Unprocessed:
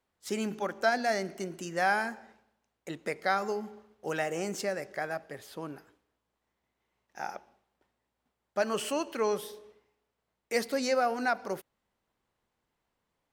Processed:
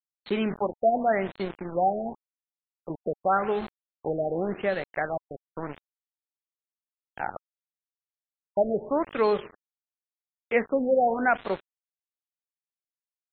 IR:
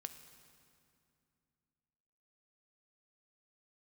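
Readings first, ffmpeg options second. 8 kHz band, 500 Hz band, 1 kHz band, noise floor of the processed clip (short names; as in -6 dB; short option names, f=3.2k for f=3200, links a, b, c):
under -35 dB, +6.0 dB, +5.0 dB, under -85 dBFS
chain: -filter_complex "[0:a]asplit=4[a][b][c][d];[b]adelay=98,afreqshift=-45,volume=-23dB[e];[c]adelay=196,afreqshift=-90,volume=-29.4dB[f];[d]adelay=294,afreqshift=-135,volume=-35.8dB[g];[a][e][f][g]amix=inputs=4:normalize=0,aeval=exprs='val(0)*gte(abs(val(0)),0.0119)':c=same,afftfilt=real='re*lt(b*sr/1024,760*pow(4400/760,0.5+0.5*sin(2*PI*0.89*pts/sr)))':imag='im*lt(b*sr/1024,760*pow(4400/760,0.5+0.5*sin(2*PI*0.89*pts/sr)))':win_size=1024:overlap=0.75,volume=6dB"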